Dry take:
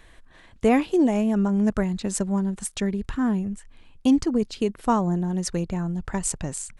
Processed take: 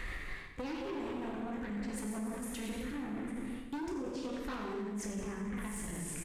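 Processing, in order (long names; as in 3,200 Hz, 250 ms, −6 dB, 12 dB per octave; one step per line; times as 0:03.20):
pitch shifter swept by a sawtooth +1 semitone, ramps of 181 ms
graphic EQ with 15 bands 630 Hz −7 dB, 1,600 Hz +6 dB, 4,000 Hz −5 dB, 10,000 Hz −6 dB
delay with pitch and tempo change per echo 274 ms, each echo +1 semitone, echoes 3, each echo −6 dB
in parallel at −11 dB: sine wavefolder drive 13 dB, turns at −8.5 dBFS
on the sum: high-shelf EQ 9,200 Hz −4.5 dB
dense smooth reverb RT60 1.2 s, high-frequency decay 1×, DRR 0 dB
wrong playback speed 44.1 kHz file played as 48 kHz
mains-hum notches 60/120/180/240 Hz
reversed playback
downward compressor 6 to 1, threshold −35 dBFS, peak gain reduction 22.5 dB
reversed playback
brickwall limiter −34.5 dBFS, peak gain reduction 10.5 dB
repeating echo 92 ms, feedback 58%, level −11.5 dB
level +2 dB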